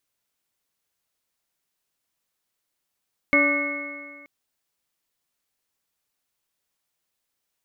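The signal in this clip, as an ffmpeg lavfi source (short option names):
-f lavfi -i "aevalsrc='0.0891*pow(10,-3*t/1.79)*sin(2*PI*286.54*t)+0.075*pow(10,-3*t/1.79)*sin(2*PI*576.33*t)+0.01*pow(10,-3*t/1.79)*sin(2*PI*872.55*t)+0.0501*pow(10,-3*t/1.79)*sin(2*PI*1178.26*t)+0.0266*pow(10,-3*t/1.79)*sin(2*PI*1496.38*t)+0.0178*pow(10,-3*t/1.79)*sin(2*PI*1829.61*t)+0.178*pow(10,-3*t/1.79)*sin(2*PI*2180.43*t)':d=0.93:s=44100"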